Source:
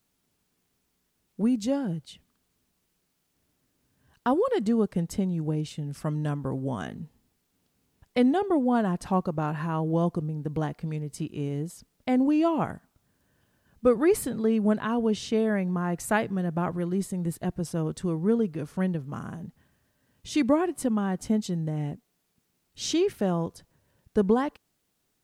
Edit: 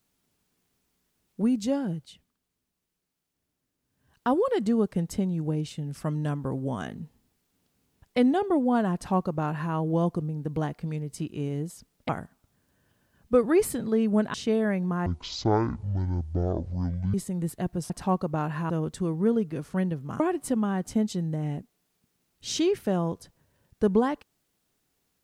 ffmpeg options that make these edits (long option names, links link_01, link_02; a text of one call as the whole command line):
ffmpeg -i in.wav -filter_complex "[0:a]asplit=10[link_01][link_02][link_03][link_04][link_05][link_06][link_07][link_08][link_09][link_10];[link_01]atrim=end=2.36,asetpts=PTS-STARTPTS,afade=type=out:start_time=1.88:duration=0.48:silence=0.375837[link_11];[link_02]atrim=start=2.36:end=3.83,asetpts=PTS-STARTPTS,volume=-8.5dB[link_12];[link_03]atrim=start=3.83:end=12.092,asetpts=PTS-STARTPTS,afade=type=in:duration=0.48:silence=0.375837[link_13];[link_04]atrim=start=12.608:end=14.862[link_14];[link_05]atrim=start=15.188:end=15.914[link_15];[link_06]atrim=start=15.91:end=16.97,asetpts=PTS-STARTPTS,asetrate=22491,aresample=44100[link_16];[link_07]atrim=start=16.966:end=17.732[link_17];[link_08]atrim=start=8.938:end=9.742[link_18];[link_09]atrim=start=17.728:end=19.232[link_19];[link_10]atrim=start=20.538[link_20];[link_11][link_12][link_13]concat=n=3:v=0:a=1[link_21];[link_21][link_14]acrossfade=duration=0.004:curve1=hsin:curve2=hsin[link_22];[link_22][link_15]acrossfade=duration=0.004:curve1=hsin:curve2=hsin[link_23];[link_23][link_16]acrossfade=duration=0.004:curve1=hsin:curve2=hsin[link_24];[link_24][link_17]acrossfade=duration=0.004:curve1=hsin:curve2=hsin[link_25];[link_25][link_18]acrossfade=duration=0.004:curve1=hsin:curve2=hsin[link_26];[link_26][link_19]acrossfade=duration=0.004:curve1=hsin:curve2=hsin[link_27];[link_27][link_20]acrossfade=duration=0.004:curve1=hsin:curve2=hsin" out.wav